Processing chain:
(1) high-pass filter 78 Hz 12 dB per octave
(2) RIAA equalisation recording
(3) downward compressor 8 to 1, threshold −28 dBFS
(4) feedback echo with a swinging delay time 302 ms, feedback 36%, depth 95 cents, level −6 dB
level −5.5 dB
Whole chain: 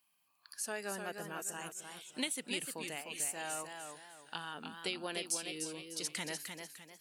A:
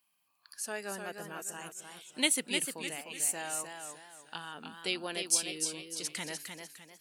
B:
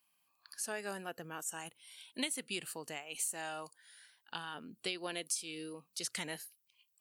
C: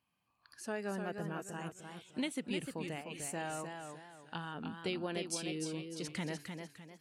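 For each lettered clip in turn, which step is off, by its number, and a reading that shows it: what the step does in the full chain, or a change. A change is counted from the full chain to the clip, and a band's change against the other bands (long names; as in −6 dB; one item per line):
3, average gain reduction 1.5 dB
4, change in momentary loudness spread +4 LU
2, 125 Hz band +10.5 dB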